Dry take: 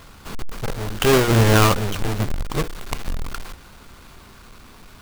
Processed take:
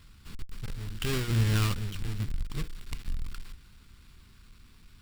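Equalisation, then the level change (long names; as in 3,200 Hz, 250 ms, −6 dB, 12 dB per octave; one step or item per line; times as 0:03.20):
guitar amp tone stack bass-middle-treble 6-0-2
high-shelf EQ 7,700 Hz −7 dB
notch filter 6,300 Hz, Q 10
+5.5 dB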